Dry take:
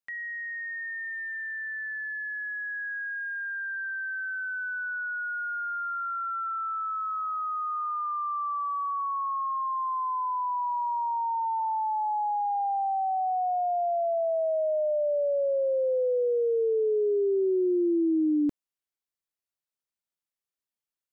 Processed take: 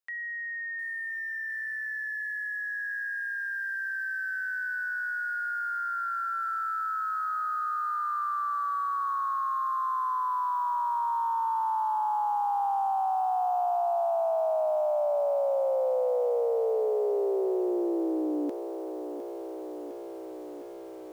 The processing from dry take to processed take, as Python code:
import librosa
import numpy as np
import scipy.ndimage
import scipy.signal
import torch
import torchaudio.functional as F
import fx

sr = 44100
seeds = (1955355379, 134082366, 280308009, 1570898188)

y = scipy.signal.sosfilt(scipy.signal.butter(2, 400.0, 'highpass', fs=sr, output='sos'), x)
y = fx.echo_crushed(y, sr, ms=707, feedback_pct=80, bits=9, wet_db=-11.5)